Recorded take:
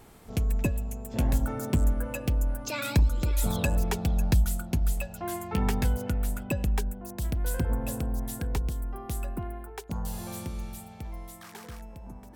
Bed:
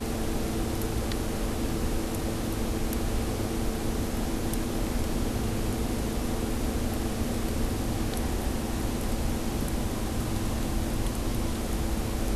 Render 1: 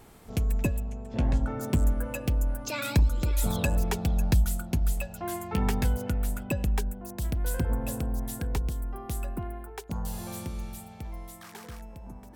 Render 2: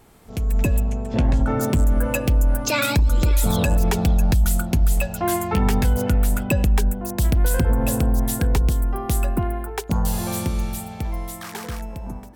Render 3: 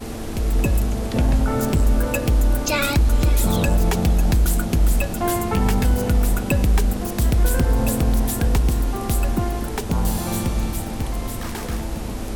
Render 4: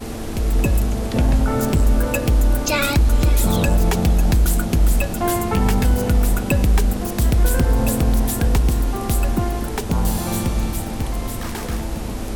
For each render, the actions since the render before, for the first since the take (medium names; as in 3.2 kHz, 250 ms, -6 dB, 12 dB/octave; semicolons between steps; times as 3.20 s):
0.80–1.61 s: distance through air 120 m
peak limiter -22.5 dBFS, peak gain reduction 9 dB; level rider gain up to 12 dB
add bed 0 dB
trim +1.5 dB